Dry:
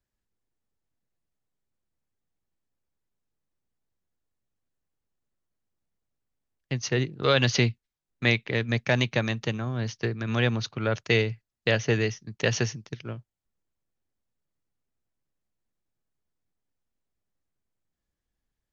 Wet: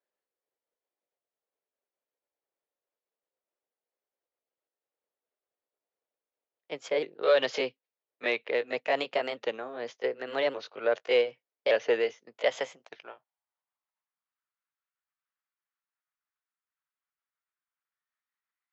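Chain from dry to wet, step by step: sawtooth pitch modulation +3 st, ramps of 1171 ms; in parallel at -4 dB: saturation -21 dBFS, distortion -12 dB; on the sum: high-pass sweep 500 Hz -> 1.3 kHz, 12.07–14.56 s; band-pass 170–3400 Hz; trim -6.5 dB

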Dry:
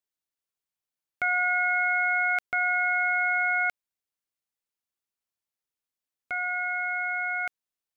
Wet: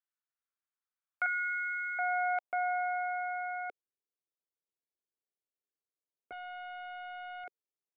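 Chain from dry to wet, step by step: band-pass sweep 1.4 kHz -> 410 Hz, 0.83–3.88 s; 1.26–1.99 s: Chebyshev band-stop 400–1500 Hz, order 4; 6.32–7.44 s: loudspeaker Doppler distortion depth 0.26 ms; trim +1.5 dB

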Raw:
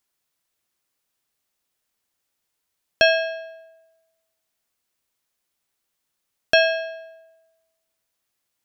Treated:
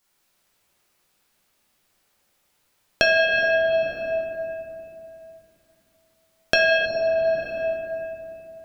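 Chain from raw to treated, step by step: simulated room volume 120 m³, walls hard, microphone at 1 m; compression 4:1, threshold -22 dBFS, peak gain reduction 13.5 dB; spectral replace 6.88–7.55 s, 1.1–4.1 kHz after; trim +4 dB

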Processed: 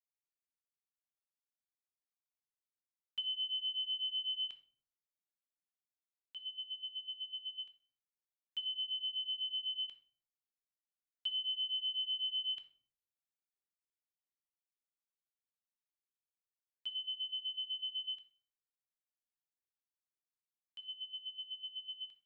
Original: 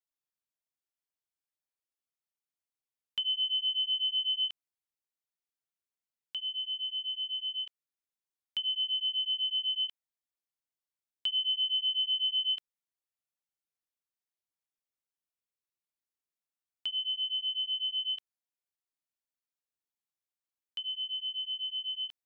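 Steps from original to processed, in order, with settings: gate -35 dBFS, range -9 dB; on a send: reverberation RT60 0.50 s, pre-delay 6 ms, DRR 8 dB; on the sum: trim -4.5 dB

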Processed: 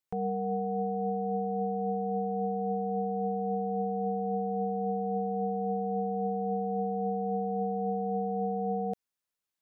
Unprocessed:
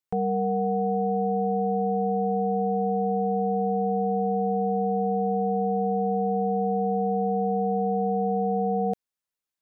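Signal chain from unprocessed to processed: peak limiter -24.5 dBFS, peak gain reduction 7.5 dB

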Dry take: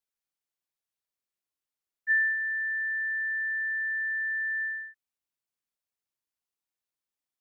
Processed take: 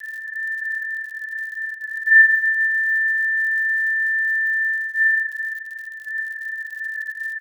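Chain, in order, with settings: spectral levelling over time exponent 0.2; LPC vocoder at 8 kHz pitch kept; elliptic high-pass 1.6 kHz; doubling 50 ms -4 dB; reverberation, pre-delay 3 ms, DRR -1.5 dB; crackle 83 per s -45 dBFS; tilt EQ +3 dB/octave; trim +5 dB

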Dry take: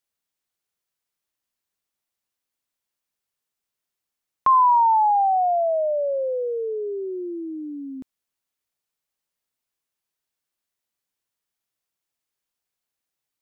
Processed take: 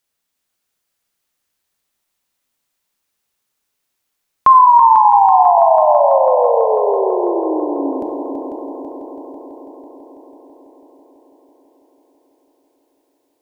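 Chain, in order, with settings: 4.66–5.58 s: steep high-pass 220 Hz; multi-head delay 165 ms, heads second and third, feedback 67%, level -8 dB; Schroeder reverb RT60 1.3 s, combs from 25 ms, DRR 6.5 dB; loudness maximiser +9.5 dB; trim -1 dB

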